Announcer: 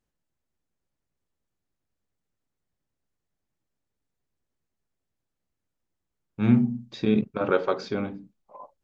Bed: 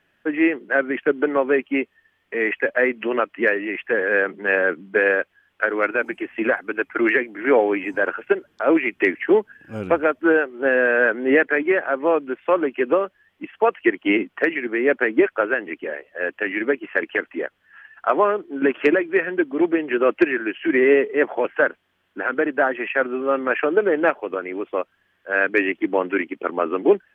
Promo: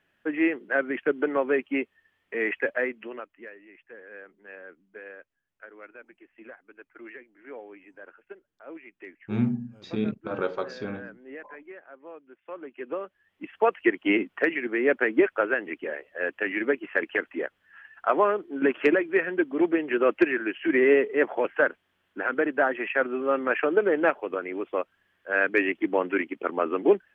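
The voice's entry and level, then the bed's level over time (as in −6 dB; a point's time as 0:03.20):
2.90 s, −5.5 dB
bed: 0:02.70 −5.5 dB
0:03.50 −25.5 dB
0:12.26 −25.5 dB
0:13.53 −4 dB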